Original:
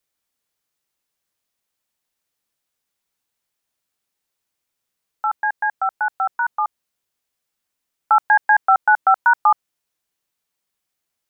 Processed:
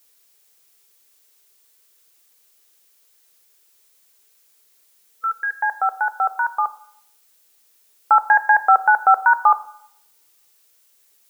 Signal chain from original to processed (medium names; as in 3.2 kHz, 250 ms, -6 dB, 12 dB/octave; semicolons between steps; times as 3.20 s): time-frequency box 5.15–5.60 s, 510–1300 Hz -29 dB; added noise blue -59 dBFS; peaking EQ 430 Hz +9.5 dB 0.6 oct; on a send: reverberation RT60 0.70 s, pre-delay 3 ms, DRR 12.5 dB